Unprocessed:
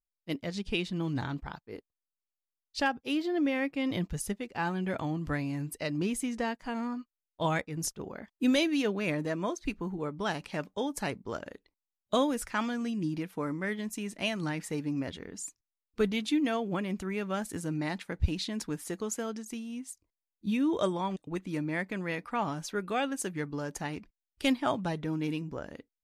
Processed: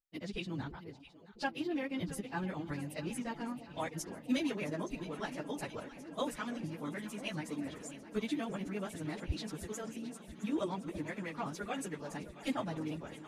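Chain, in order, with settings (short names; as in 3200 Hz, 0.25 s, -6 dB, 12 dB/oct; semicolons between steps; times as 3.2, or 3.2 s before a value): echo with dull and thin repeats by turns 0.653 s, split 850 Hz, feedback 89%, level -14 dB; plain phase-vocoder stretch 0.51×; gain -3.5 dB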